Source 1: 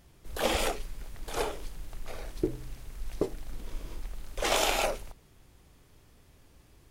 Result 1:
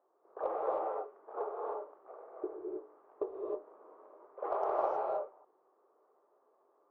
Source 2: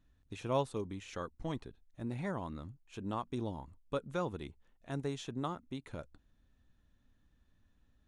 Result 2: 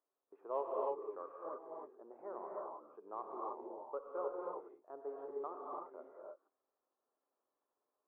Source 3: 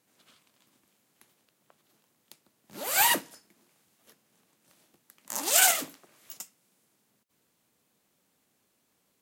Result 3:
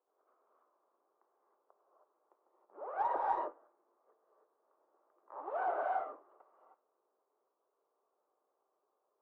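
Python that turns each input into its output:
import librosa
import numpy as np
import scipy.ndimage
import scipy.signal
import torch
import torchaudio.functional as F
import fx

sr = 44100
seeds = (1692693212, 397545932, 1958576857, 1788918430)

y = scipy.signal.sosfilt(scipy.signal.ellip(3, 1.0, 70, [390.0, 1200.0], 'bandpass', fs=sr, output='sos'), x)
y = fx.cheby_harmonics(y, sr, harmonics=(6, 8), levels_db=(-33, -35), full_scale_db=-15.5)
y = fx.rev_gated(y, sr, seeds[0], gate_ms=340, shape='rising', drr_db=-2.0)
y = y * 10.0 ** (-5.0 / 20.0)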